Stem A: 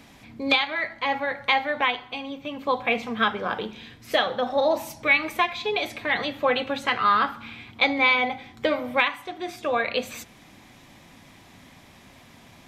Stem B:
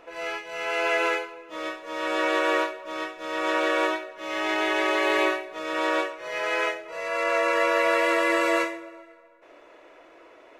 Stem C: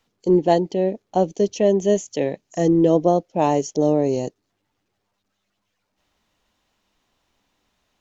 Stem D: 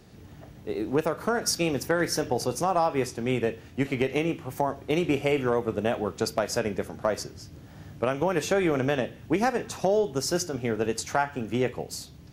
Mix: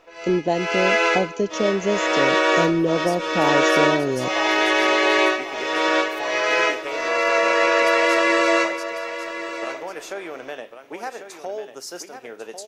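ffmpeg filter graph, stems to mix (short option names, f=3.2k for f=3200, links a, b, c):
-filter_complex "[1:a]dynaudnorm=f=420:g=3:m=11.5dB,lowpass=f=5.7k:t=q:w=2.1,volume=-4.5dB,asplit=2[a][b];[b]volume=-12dB[c];[2:a]volume=2dB[d];[3:a]highpass=470,adelay=1600,volume=-5dB,asplit=2[e][f];[f]volume=-9.5dB[g];[d][e]amix=inputs=2:normalize=0,acompressor=threshold=-22dB:ratio=2,volume=0dB[h];[c][g]amix=inputs=2:normalize=0,aecho=0:1:1096:1[i];[a][h][i]amix=inputs=3:normalize=0"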